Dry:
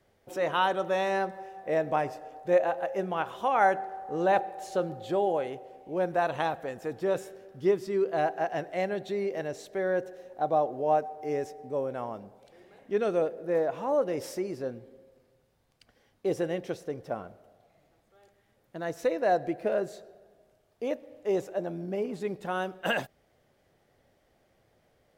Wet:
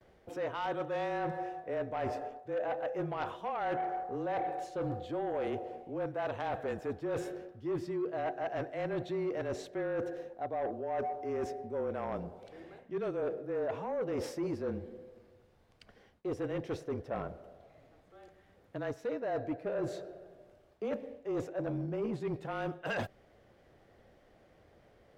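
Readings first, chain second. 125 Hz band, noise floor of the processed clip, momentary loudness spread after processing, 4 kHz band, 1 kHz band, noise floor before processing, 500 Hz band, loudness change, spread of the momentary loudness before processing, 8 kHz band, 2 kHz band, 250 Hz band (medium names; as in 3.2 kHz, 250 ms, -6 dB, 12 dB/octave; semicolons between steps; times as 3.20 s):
-0.5 dB, -64 dBFS, 7 LU, -9.0 dB, -8.0 dB, -69 dBFS, -7.0 dB, -7.0 dB, 11 LU, no reading, -8.0 dB, -3.0 dB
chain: frequency shift -27 Hz; low-pass 2.7 kHz 6 dB/octave; reverse; compression 16:1, threshold -35 dBFS, peak gain reduction 18 dB; reverse; Chebyshev shaper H 5 -15 dB, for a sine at -24.5 dBFS; gate with hold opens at -58 dBFS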